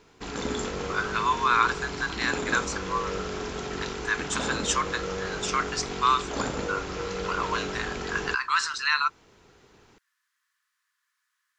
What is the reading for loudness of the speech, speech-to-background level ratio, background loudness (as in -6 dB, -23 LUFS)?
-28.0 LUFS, 4.5 dB, -32.5 LUFS